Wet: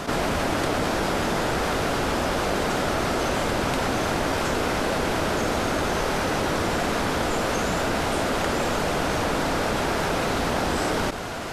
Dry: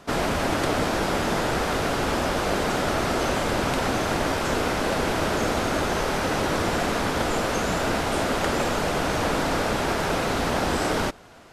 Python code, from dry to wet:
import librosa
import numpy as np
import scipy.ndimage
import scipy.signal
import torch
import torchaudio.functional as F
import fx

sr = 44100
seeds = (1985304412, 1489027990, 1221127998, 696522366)

y = fx.env_flatten(x, sr, amount_pct=70)
y = F.gain(torch.from_numpy(y), -1.5).numpy()